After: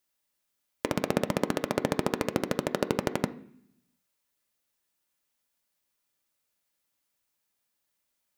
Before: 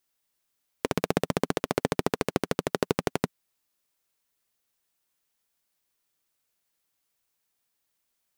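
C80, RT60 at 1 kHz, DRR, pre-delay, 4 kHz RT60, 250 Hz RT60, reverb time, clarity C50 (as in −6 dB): 20.0 dB, 0.60 s, 7.5 dB, 3 ms, 0.80 s, 0.95 s, 0.60 s, 16.5 dB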